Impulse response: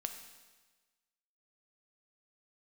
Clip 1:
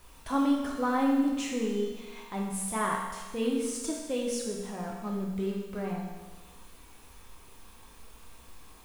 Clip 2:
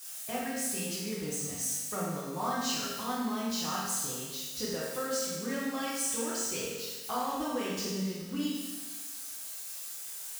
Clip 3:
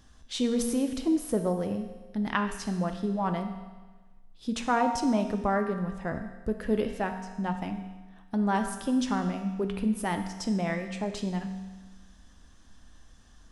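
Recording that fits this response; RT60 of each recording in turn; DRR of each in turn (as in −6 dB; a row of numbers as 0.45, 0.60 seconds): 3; 1.3, 1.3, 1.3 seconds; −2.5, −9.0, 5.5 decibels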